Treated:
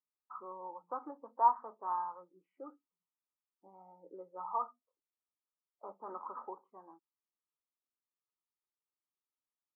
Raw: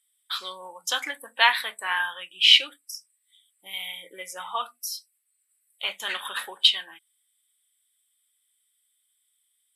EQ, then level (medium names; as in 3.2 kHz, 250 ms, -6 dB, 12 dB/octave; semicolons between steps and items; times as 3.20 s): high-pass 140 Hz; rippled Chebyshev low-pass 1.3 kHz, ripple 6 dB; distance through air 420 m; 0.0 dB